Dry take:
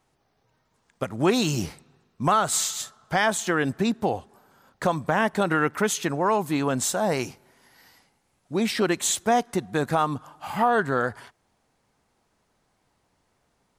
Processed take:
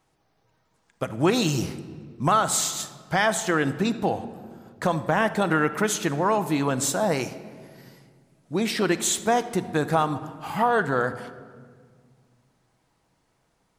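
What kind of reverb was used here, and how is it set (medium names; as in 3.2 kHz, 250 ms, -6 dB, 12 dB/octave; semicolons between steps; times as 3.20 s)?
simulated room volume 2600 m³, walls mixed, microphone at 0.63 m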